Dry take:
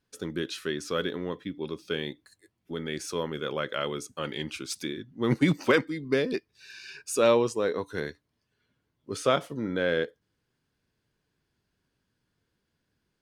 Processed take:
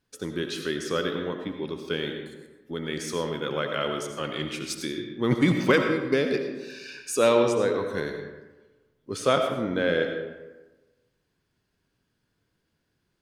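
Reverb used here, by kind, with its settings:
comb and all-pass reverb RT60 1.2 s, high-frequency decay 0.55×, pre-delay 45 ms, DRR 4.5 dB
level +1.5 dB

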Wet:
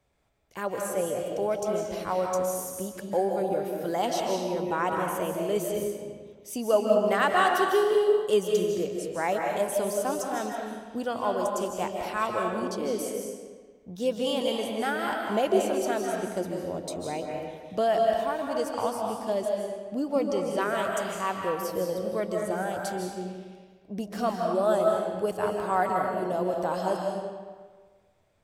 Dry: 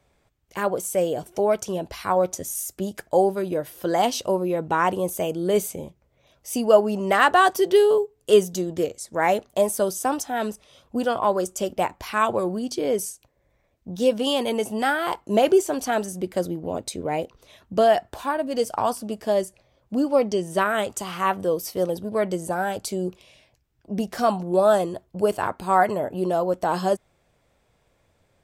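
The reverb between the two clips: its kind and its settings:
comb and all-pass reverb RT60 1.5 s, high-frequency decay 0.8×, pre-delay 115 ms, DRR 0.5 dB
level −7.5 dB

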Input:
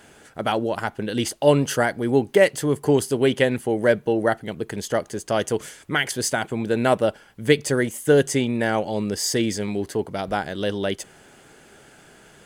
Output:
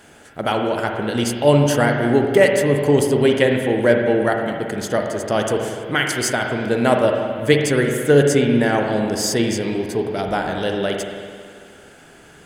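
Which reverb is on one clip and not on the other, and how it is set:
spring reverb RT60 2.1 s, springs 42/55 ms, chirp 60 ms, DRR 2 dB
level +2 dB

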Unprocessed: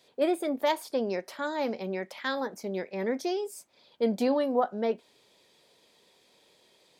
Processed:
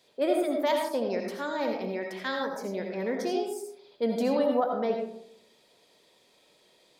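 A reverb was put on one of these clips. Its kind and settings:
comb and all-pass reverb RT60 0.71 s, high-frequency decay 0.35×, pre-delay 40 ms, DRR 2 dB
level −1.5 dB

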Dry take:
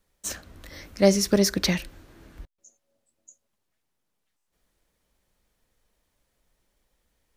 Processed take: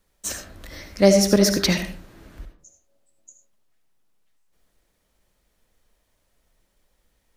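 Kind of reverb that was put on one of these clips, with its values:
comb and all-pass reverb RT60 0.48 s, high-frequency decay 0.45×, pre-delay 35 ms, DRR 6.5 dB
level +3 dB

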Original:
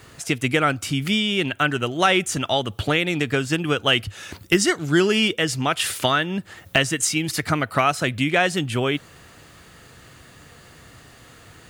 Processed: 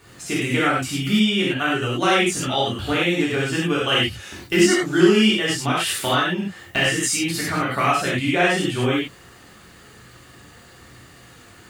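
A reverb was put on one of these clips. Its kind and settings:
reverb whose tail is shaped and stops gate 130 ms flat, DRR −7 dB
level −7 dB

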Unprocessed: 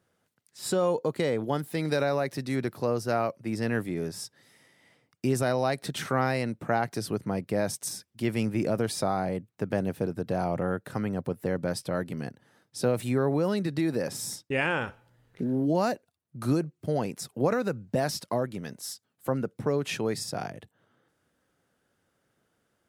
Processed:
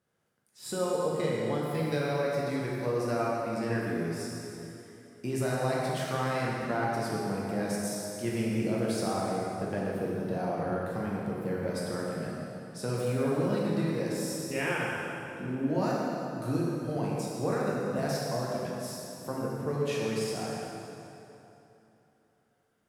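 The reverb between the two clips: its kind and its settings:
dense smooth reverb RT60 3.1 s, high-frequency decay 0.75×, DRR −5.5 dB
level −8.5 dB

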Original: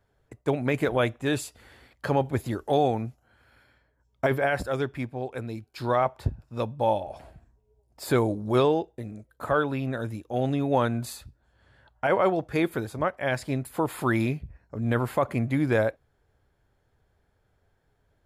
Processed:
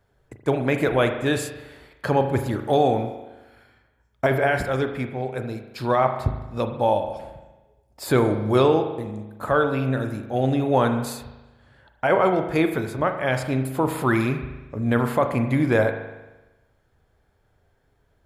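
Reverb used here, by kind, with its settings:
spring reverb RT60 1.1 s, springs 38 ms, chirp 40 ms, DRR 6.5 dB
level +3.5 dB

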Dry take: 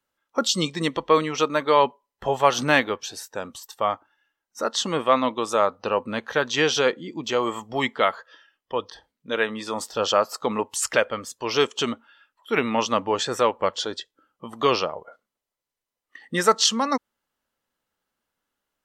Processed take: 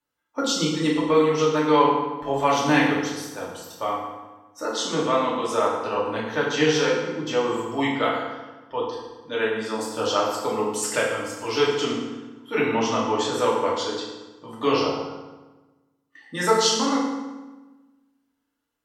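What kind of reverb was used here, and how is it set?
feedback delay network reverb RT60 1.2 s, low-frequency decay 1.3×, high-frequency decay 0.75×, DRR −6 dB
level −7.5 dB

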